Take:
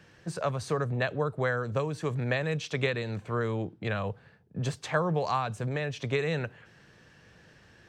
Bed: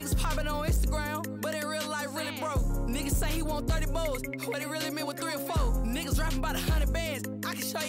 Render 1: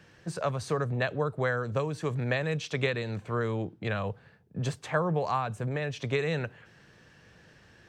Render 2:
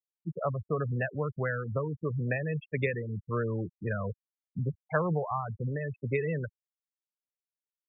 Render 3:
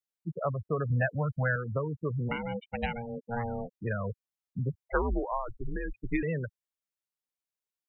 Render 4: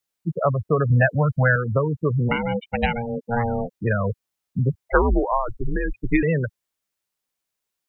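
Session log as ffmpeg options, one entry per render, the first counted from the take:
-filter_complex "[0:a]asettb=1/sr,asplit=3[a][b][c];[a]atrim=end=4.734[d];[b]atrim=start=4.73:end=5.82,asetpts=PTS-STARTPTS,afade=t=in:d=0.004:c=qsin,afade=t=out:st=1.086:d=0.004:c=qsin,equalizer=f=4.8k:w=0.9:g=-6[e];[c]atrim=start=5.816[f];[d][e]acrossfade=d=0.004:c1=hsin:c2=qsin[g];[g][f]acrossfade=d=0.004:c1=qsin:c2=hsin"
-af "afftfilt=real='re*gte(hypot(re,im),0.0631)':imag='im*gte(hypot(re,im),0.0631)':win_size=1024:overlap=0.75,adynamicequalizer=threshold=0.00794:dfrequency=740:dqfactor=0.74:tfrequency=740:tqfactor=0.74:attack=5:release=100:ratio=0.375:range=3.5:mode=cutabove:tftype=bell"
-filter_complex "[0:a]asettb=1/sr,asplit=3[a][b][c];[a]atrim=end=0.904[d];[b]atrim=start=0.9:end=1.56,asetpts=PTS-STARTPTS,afade=t=in:d=0.004:c=qsin,afade=t=out:st=0.656:d=0.004:c=qsin,aecho=1:1:1.3:0.99,atrim=end_sample=29106[e];[c]atrim=start=1.556[f];[d][e]acrossfade=d=0.004:c1=hsin:c2=qsin[g];[g][f]acrossfade=d=0.004:c1=qsin:c2=hsin,asplit=3[h][i][j];[h]afade=t=out:st=2.28:d=0.02[k];[i]aeval=exprs='val(0)*sin(2*PI*350*n/s)':c=same,afade=t=in:st=2.28:d=0.02,afade=t=out:st=3.7:d=0.02[l];[j]afade=t=in:st=3.7:d=0.02[m];[k][l][m]amix=inputs=3:normalize=0,asettb=1/sr,asplit=3[n][o][p];[n]atrim=end=4.844[q];[o]atrim=start=4.84:end=6.23,asetpts=PTS-STARTPTS,afade=t=in:d=0.004:c=qsin,afade=t=out:st=1.386:d=0.004:c=qsin,afreqshift=-110[r];[p]atrim=start=6.226[s];[q][r]acrossfade=d=0.004:c1=hsin:c2=qsin[t];[t][s]acrossfade=d=0.004:c1=qsin:c2=hsin"
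-af "volume=10.5dB"

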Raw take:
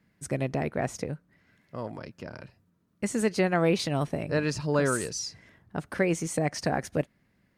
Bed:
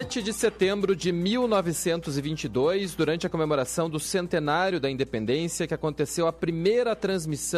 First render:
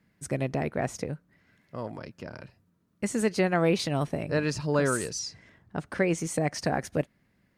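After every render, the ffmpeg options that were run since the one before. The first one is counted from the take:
-filter_complex "[0:a]asettb=1/sr,asplit=3[a][b][c];[a]atrim=end=5.194[d];[b]atrim=start=5.19:end=6.18,asetpts=PTS-STARTPTS,afade=t=in:d=0.004:c=qsin,afade=t=out:st=0.986:d=0.004:c=qsin,equalizer=f=12k:t=o:w=0.3:g=-13.5[e];[c]atrim=start=6.176[f];[d][e]acrossfade=d=0.004:c1=hsin:c2=qsin[g];[g][f]acrossfade=d=0.004:c1=qsin:c2=hsin"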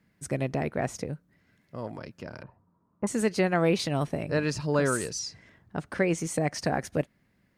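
-filter_complex "[0:a]asettb=1/sr,asplit=3[a][b][c];[a]atrim=end=1.024[d];[b]atrim=start=1.02:end=1.83,asetpts=PTS-STARTPTS,afade=t=in:d=0.004:c=qsin,afade=t=out:st=0.806:d=0.004:c=qsin,equalizer=f=1.6k:w=0.41:g=-3.5[e];[c]atrim=start=1.826[f];[d][e]acrossfade=d=0.004:c1=hsin:c2=qsin[g];[g][f]acrossfade=d=0.004:c1=qsin:c2=hsin,asettb=1/sr,asplit=3[h][i][j];[h]atrim=end=2.434[k];[i]atrim=start=2.43:end=3.07,asetpts=PTS-STARTPTS,afade=t=in:d=0.004:c=qsin,afade=t=out:st=0.636:d=0.004:c=qsin,lowpass=f=990:t=q:w=4.5[l];[j]atrim=start=3.066[m];[k][l]acrossfade=d=0.004:c1=hsin:c2=qsin[n];[n][m]acrossfade=d=0.004:c1=qsin:c2=hsin"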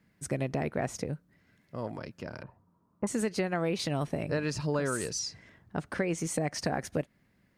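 -af "acompressor=threshold=-26dB:ratio=6"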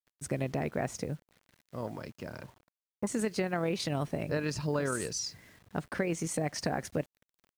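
-af "tremolo=f=41:d=0.261,acrusher=bits=9:mix=0:aa=0.000001"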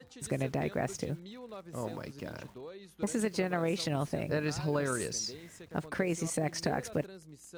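-filter_complex "[1:a]volume=-22.5dB[a];[0:a][a]amix=inputs=2:normalize=0"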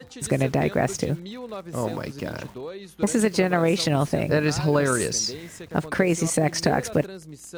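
-af "volume=10.5dB"

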